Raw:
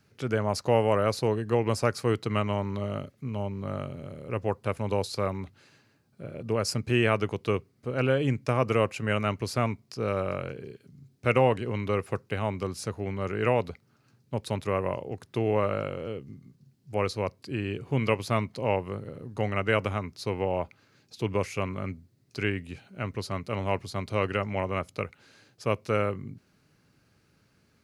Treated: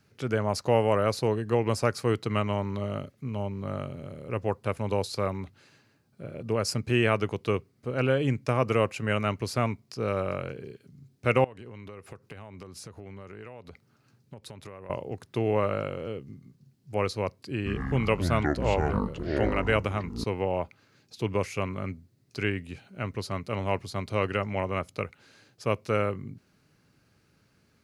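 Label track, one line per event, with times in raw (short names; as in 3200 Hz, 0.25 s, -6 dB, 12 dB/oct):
11.440000	14.900000	compressor 12:1, threshold -39 dBFS
17.560000	20.240000	echoes that change speed 0.101 s, each echo -7 st, echoes 2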